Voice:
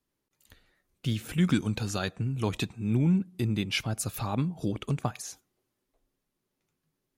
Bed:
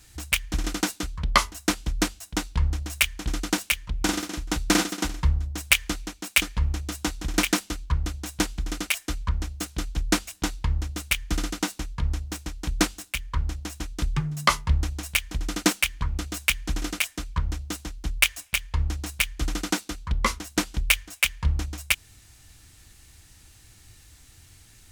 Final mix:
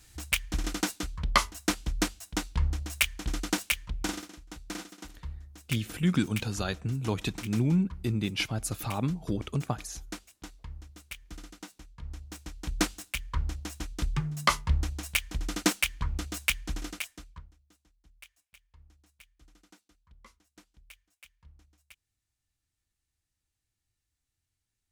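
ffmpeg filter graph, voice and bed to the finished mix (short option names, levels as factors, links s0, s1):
-filter_complex "[0:a]adelay=4650,volume=0.891[s0];[1:a]volume=3.16,afade=t=out:st=3.82:d=0.56:silence=0.199526,afade=t=in:st=11.97:d=0.97:silence=0.199526,afade=t=out:st=16.43:d=1.08:silence=0.0375837[s1];[s0][s1]amix=inputs=2:normalize=0"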